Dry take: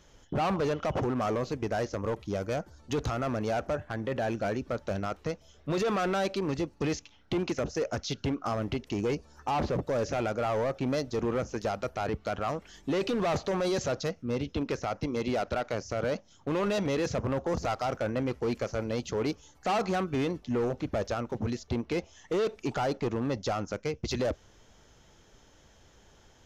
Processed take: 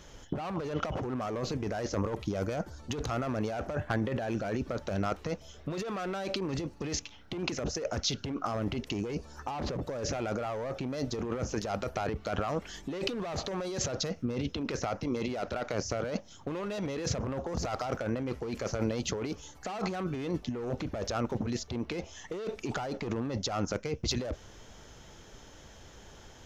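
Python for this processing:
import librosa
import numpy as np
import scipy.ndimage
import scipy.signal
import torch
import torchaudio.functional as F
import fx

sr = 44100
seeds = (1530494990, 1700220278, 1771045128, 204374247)

y = fx.over_compress(x, sr, threshold_db=-35.0, ratio=-1.0)
y = F.gain(torch.from_numpy(y), 2.0).numpy()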